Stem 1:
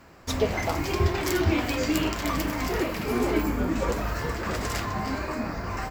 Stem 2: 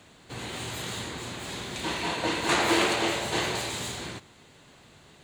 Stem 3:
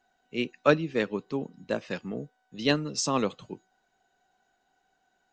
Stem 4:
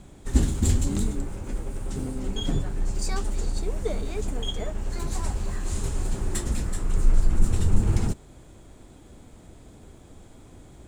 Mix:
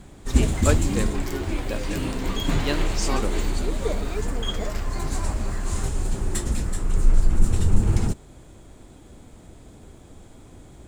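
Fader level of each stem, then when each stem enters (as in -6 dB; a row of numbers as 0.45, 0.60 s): -8.0, -10.0, -3.0, +2.0 dB; 0.00, 0.00, 0.00, 0.00 s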